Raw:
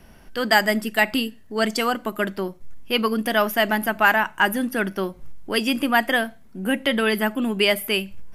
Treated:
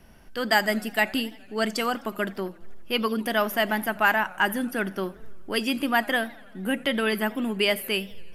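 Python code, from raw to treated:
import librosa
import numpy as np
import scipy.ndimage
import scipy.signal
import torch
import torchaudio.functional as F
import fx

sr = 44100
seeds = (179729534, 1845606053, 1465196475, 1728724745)

y = fx.echo_warbled(x, sr, ms=84, feedback_pct=72, rate_hz=2.8, cents=205, wet_db=-23.5)
y = y * 10.0 ** (-4.0 / 20.0)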